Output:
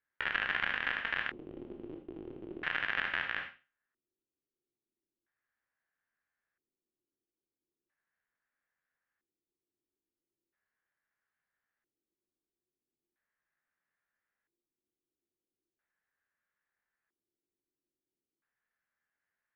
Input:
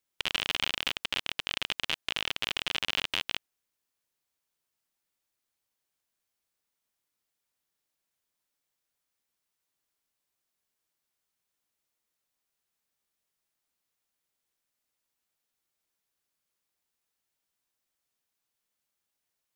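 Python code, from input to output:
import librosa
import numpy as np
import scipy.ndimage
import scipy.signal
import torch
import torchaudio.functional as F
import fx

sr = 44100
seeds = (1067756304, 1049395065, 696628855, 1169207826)

y = fx.spec_trails(x, sr, decay_s=0.32)
y = fx.rev_gated(y, sr, seeds[0], gate_ms=100, shape='rising', drr_db=6.5)
y = fx.filter_lfo_lowpass(y, sr, shape='square', hz=0.38, low_hz=350.0, high_hz=1700.0, q=6.1)
y = y * 10.0 ** (-6.5 / 20.0)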